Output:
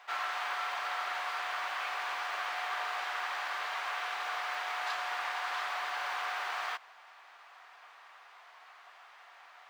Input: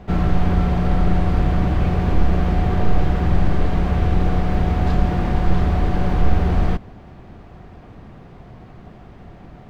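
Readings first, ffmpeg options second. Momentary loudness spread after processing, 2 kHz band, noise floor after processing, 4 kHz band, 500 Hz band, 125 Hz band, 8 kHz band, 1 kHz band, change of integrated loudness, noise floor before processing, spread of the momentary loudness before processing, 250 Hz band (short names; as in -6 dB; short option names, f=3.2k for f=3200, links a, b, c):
20 LU, 0.0 dB, -56 dBFS, 0.0 dB, -19.5 dB, under -40 dB, n/a, -6.5 dB, -14.5 dB, -42 dBFS, 2 LU, under -40 dB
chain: -af "highpass=f=1k:w=0.5412,highpass=f=1k:w=1.3066"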